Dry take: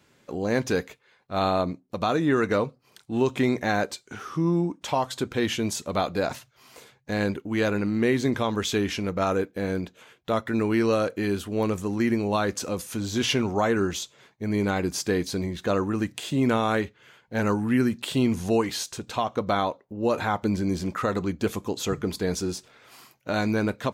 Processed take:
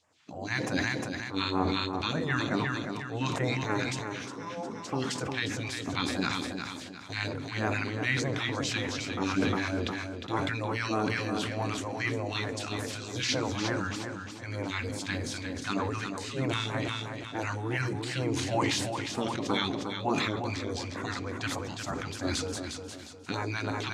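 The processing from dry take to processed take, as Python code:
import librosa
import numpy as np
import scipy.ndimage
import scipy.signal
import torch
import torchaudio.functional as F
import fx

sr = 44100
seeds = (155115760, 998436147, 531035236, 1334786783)

p1 = scipy.signal.sosfilt(scipy.signal.butter(2, 150.0, 'highpass', fs=sr, output='sos'), x)
p2 = fx.hum_notches(p1, sr, base_hz=50, count=7)
p3 = fx.spec_gate(p2, sr, threshold_db=-10, keep='weak')
p4 = fx.peak_eq(p3, sr, hz=280.0, db=9.5, octaves=0.24)
p5 = fx.phaser_stages(p4, sr, stages=2, low_hz=450.0, high_hz=3800.0, hz=3.3, feedback_pct=25)
p6 = fx.air_absorb(p5, sr, metres=94.0)
p7 = p6 + fx.echo_feedback(p6, sr, ms=356, feedback_pct=38, wet_db=-7.0, dry=0)
p8 = fx.rev_fdn(p7, sr, rt60_s=1.3, lf_ratio=1.0, hf_ratio=0.85, size_ms=24.0, drr_db=19.0)
p9 = fx.sustainer(p8, sr, db_per_s=27.0)
y = F.gain(torch.from_numpy(p9), 3.5).numpy()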